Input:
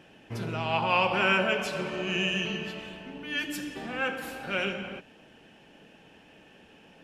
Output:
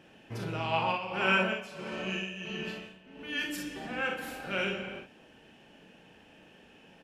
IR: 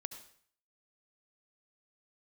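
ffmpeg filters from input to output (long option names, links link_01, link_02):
-filter_complex "[0:a]asplit=3[link_01][link_02][link_03];[link_01]afade=type=out:start_time=0.91:duration=0.02[link_04];[link_02]tremolo=f=1.5:d=0.77,afade=type=in:start_time=0.91:duration=0.02,afade=type=out:start_time=3.18:duration=0.02[link_05];[link_03]afade=type=in:start_time=3.18:duration=0.02[link_06];[link_04][link_05][link_06]amix=inputs=3:normalize=0,aecho=1:1:37|59:0.531|0.473,volume=-3.5dB"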